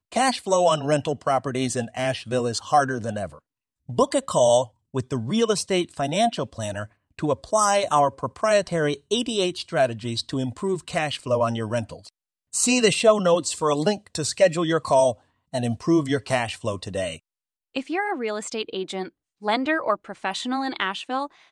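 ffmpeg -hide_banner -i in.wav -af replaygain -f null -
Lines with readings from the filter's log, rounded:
track_gain = +2.4 dB
track_peak = 0.342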